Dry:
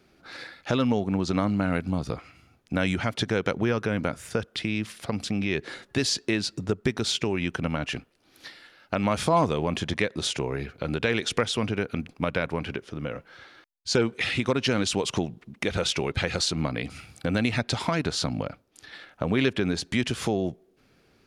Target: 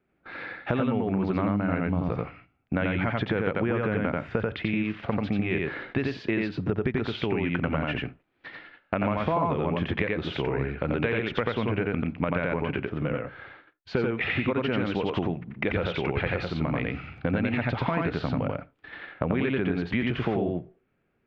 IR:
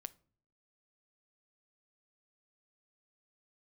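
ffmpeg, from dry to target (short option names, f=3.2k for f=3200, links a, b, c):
-filter_complex "[0:a]agate=range=-16dB:threshold=-50dB:ratio=16:detection=peak,asplit=2[a][b];[1:a]atrim=start_sample=2205,afade=t=out:st=0.14:d=0.01,atrim=end_sample=6615,adelay=88[c];[b][c]afir=irnorm=-1:irlink=0,volume=3dB[d];[a][d]amix=inputs=2:normalize=0,acompressor=threshold=-25dB:ratio=6,lowpass=f=2.6k:w=0.5412,lowpass=f=2.6k:w=1.3066,volume=3dB"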